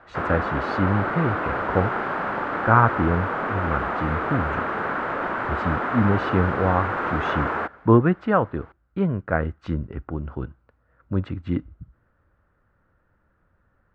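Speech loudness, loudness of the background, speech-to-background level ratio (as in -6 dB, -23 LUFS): -25.0 LUFS, -26.0 LUFS, 1.0 dB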